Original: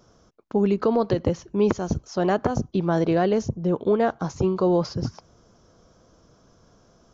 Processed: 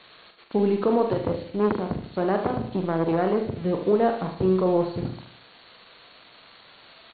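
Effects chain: zero-crossing glitches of -19 dBFS; high-pass 110 Hz 6 dB/octave; treble shelf 2.4 kHz -10 dB; crossover distortion -41.5 dBFS; brick-wall FIR low-pass 4.5 kHz; doubling 43 ms -7 dB; feedback delay 75 ms, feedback 45%, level -9.5 dB; 1.05–3.60 s: transformer saturation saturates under 610 Hz

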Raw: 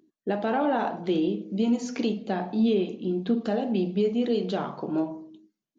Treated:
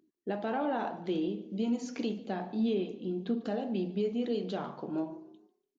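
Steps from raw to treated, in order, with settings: frequency-shifting echo 145 ms, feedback 36%, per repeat +34 Hz, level -20.5 dB; trim -7 dB

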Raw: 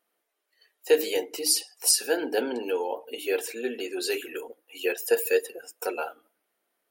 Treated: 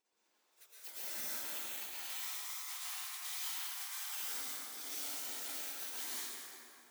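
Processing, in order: companding laws mixed up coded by mu; differentiator; spectral gate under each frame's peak -25 dB weak; 1.45–4.17 s: rippled Chebyshev high-pass 740 Hz, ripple 3 dB; compressor with a negative ratio -56 dBFS, ratio -1; plate-style reverb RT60 3.1 s, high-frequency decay 0.55×, pre-delay 100 ms, DRR -9.5 dB; trim +7 dB

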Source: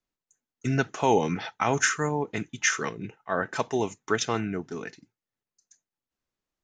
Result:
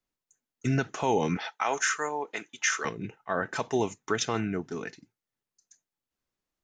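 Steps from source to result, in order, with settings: 1.37–2.85 s: high-pass 530 Hz 12 dB/octave; peak limiter -15 dBFS, peak gain reduction 5 dB

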